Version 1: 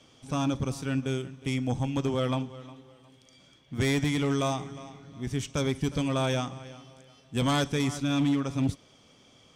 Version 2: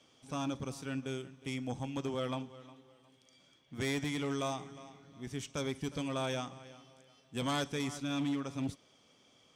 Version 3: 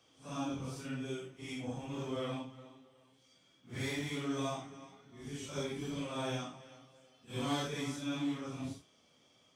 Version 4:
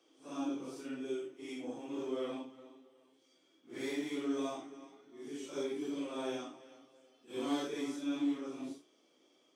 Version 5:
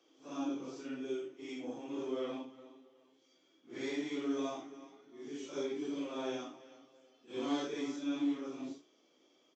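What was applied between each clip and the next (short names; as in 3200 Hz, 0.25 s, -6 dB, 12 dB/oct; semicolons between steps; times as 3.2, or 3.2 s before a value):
low shelf 130 Hz -10.5 dB; gain -6.5 dB
phase scrambler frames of 0.2 s; gain -2 dB
resonant high-pass 330 Hz, resonance Q 4.1; gain -4.5 dB
downsampling 16000 Hz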